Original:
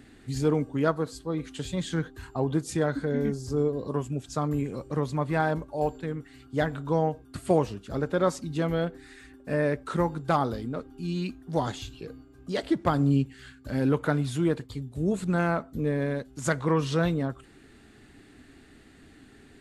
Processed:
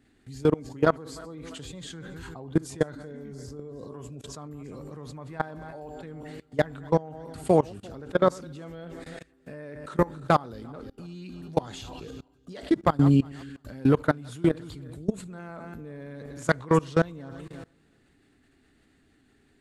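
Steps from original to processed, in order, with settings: backward echo that repeats 173 ms, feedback 48%, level -14 dB; level held to a coarse grid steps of 23 dB; trim +5.5 dB

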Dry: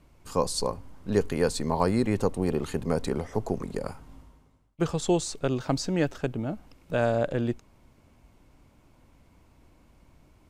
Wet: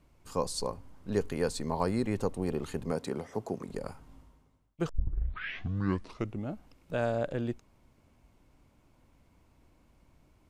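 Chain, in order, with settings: 2.91–3.69 s: high-pass 130 Hz 12 dB/octave; 4.89 s: tape start 1.63 s; trim -5.5 dB

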